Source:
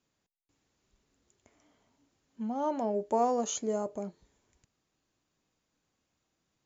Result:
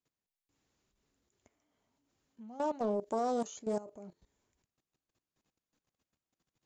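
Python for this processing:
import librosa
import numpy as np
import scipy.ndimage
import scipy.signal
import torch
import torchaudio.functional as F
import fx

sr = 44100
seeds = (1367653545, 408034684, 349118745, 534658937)

y = fx.level_steps(x, sr, step_db=16)
y = fx.high_shelf(y, sr, hz=4000.0, db=8.0, at=(2.48, 3.47))
y = fx.doppler_dist(y, sr, depth_ms=0.27)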